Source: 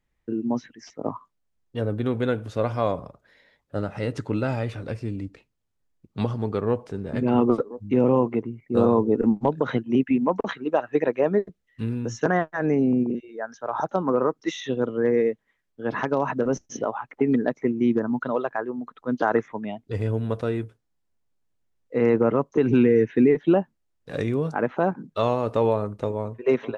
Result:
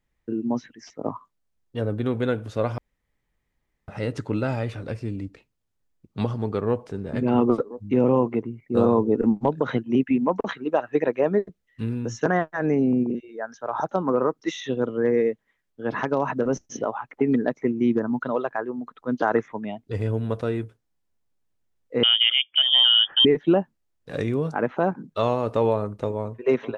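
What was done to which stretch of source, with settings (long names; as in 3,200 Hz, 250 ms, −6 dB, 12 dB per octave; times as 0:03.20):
0:02.78–0:03.88: fill with room tone
0:22.03–0:23.25: voice inversion scrambler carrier 3,400 Hz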